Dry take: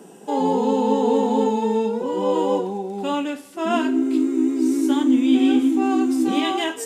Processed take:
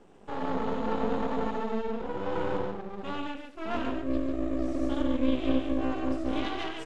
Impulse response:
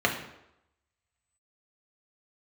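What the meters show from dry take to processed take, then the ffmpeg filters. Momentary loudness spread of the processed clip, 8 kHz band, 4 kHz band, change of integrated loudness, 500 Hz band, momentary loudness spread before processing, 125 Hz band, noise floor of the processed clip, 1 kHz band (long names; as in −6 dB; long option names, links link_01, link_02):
8 LU, below −20 dB, −11.0 dB, −11.0 dB, −10.5 dB, 8 LU, can't be measured, −49 dBFS, −10.5 dB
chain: -af "aecho=1:1:93.29|142.9:0.355|0.562,aeval=exprs='max(val(0),0)':channel_layout=same,lowpass=4100,volume=-8dB"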